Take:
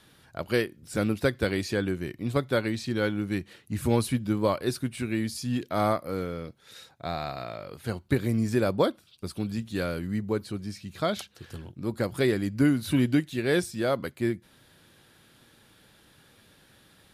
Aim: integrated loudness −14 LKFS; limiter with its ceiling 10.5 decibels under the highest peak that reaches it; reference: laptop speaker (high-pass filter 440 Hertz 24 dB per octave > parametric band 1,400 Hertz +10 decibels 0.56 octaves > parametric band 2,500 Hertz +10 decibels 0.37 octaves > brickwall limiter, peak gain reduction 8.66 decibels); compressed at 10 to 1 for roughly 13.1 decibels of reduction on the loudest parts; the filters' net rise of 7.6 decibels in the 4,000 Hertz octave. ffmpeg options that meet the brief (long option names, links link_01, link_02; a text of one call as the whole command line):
ffmpeg -i in.wav -af "equalizer=frequency=4000:width_type=o:gain=7,acompressor=threshold=-32dB:ratio=10,alimiter=level_in=5dB:limit=-24dB:level=0:latency=1,volume=-5dB,highpass=frequency=440:width=0.5412,highpass=frequency=440:width=1.3066,equalizer=frequency=1400:width_type=o:width=0.56:gain=10,equalizer=frequency=2500:width_type=o:width=0.37:gain=10,volume=30dB,alimiter=limit=-2.5dB:level=0:latency=1" out.wav